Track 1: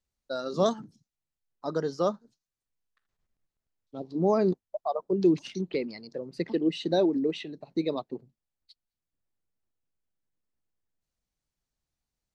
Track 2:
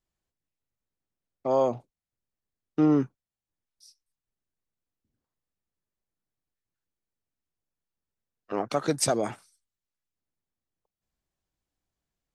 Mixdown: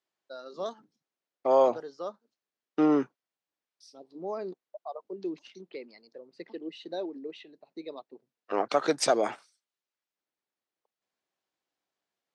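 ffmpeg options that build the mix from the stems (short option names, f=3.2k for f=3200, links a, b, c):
-filter_complex "[0:a]volume=-9dB[a];[1:a]volume=3dB[b];[a][b]amix=inputs=2:normalize=0,highpass=370,lowpass=5.3k"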